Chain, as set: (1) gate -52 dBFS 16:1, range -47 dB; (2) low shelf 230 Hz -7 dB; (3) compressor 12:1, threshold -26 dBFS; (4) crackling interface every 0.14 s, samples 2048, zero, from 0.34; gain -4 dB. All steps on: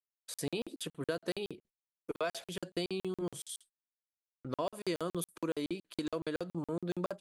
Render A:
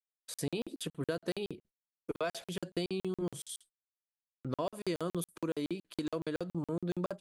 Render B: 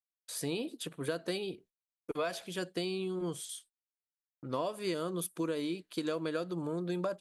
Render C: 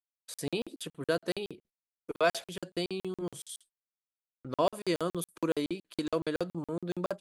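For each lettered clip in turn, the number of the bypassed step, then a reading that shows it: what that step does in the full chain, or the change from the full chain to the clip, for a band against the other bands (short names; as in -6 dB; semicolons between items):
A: 2, 125 Hz band +3.5 dB; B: 4, crest factor change -2.0 dB; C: 3, mean gain reduction 2.5 dB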